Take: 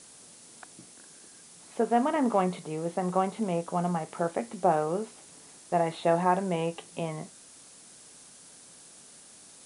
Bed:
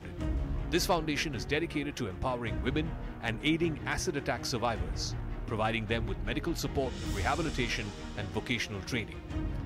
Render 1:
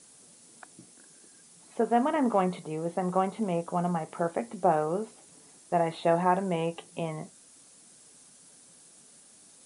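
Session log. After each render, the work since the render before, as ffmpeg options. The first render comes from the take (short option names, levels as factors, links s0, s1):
-af "afftdn=nr=6:nf=-52"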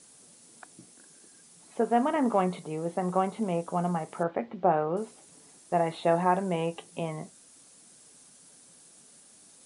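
-filter_complex "[0:a]asettb=1/sr,asplit=3[s0][s1][s2];[s0]atrim=end=4.234[s3];[s1]atrim=start=4.23:end=4.97,asetpts=PTS-STARTPTS,afade=t=in:d=0.004:c=qsin,afade=t=out:st=0.736:d=0.004:c=qsin,lowpass=f=3400:w=0.5412,lowpass=f=3400:w=1.3066[s4];[s2]atrim=start=4.966[s5];[s3][s4]acrossfade=d=0.004:c1=hsin:c2=qsin[s6];[s6][s5]acrossfade=d=0.004:c1=qsin:c2=hsin"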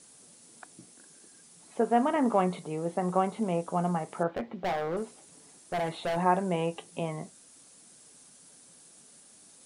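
-filter_complex "[0:a]asettb=1/sr,asplit=3[s0][s1][s2];[s0]atrim=end=4.304[s3];[s1]atrim=start=4.3:end=6.17,asetpts=PTS-STARTPTS,afade=t=in:d=0.004:c=qsin,afade=t=out:st=1.866:d=0.004:c=qsin,asoftclip=type=hard:threshold=0.0447[s4];[s2]atrim=start=6.166[s5];[s3][s4]acrossfade=d=0.004:c1=hsin:c2=qsin[s6];[s6][s5]acrossfade=d=0.004:c1=qsin:c2=hsin"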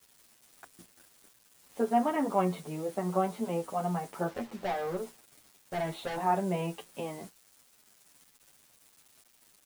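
-filter_complex "[0:a]acrusher=bits=7:mix=0:aa=0.000001,asplit=2[s0][s1];[s1]adelay=8.7,afreqshift=-1.2[s2];[s0][s2]amix=inputs=2:normalize=1"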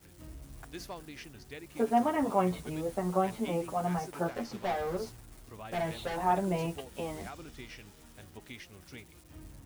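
-filter_complex "[1:a]volume=0.178[s0];[0:a][s0]amix=inputs=2:normalize=0"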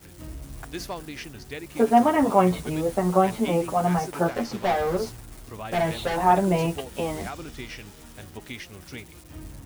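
-af "volume=2.82"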